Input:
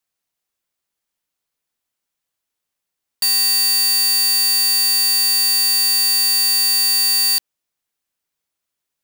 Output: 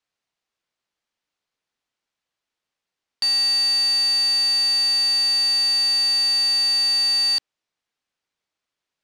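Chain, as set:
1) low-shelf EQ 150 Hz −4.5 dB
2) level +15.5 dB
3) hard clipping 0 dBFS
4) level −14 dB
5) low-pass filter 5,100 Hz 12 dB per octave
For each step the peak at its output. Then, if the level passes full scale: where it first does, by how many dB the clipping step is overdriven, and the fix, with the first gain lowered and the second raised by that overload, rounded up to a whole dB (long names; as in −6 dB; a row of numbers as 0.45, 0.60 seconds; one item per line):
−11.0, +4.5, 0.0, −14.0, −15.0 dBFS
step 2, 4.5 dB
step 2 +10.5 dB, step 4 −9 dB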